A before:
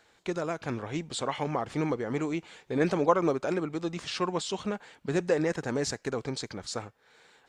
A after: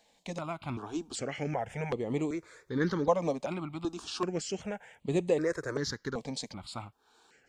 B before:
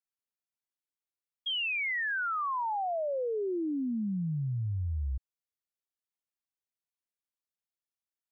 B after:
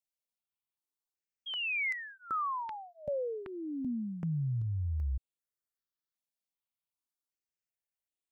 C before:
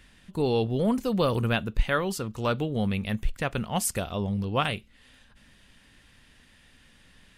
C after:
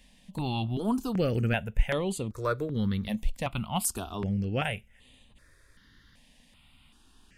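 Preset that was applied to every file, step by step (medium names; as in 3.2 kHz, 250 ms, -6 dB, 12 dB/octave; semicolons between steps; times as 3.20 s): stepped phaser 2.6 Hz 370–5400 Hz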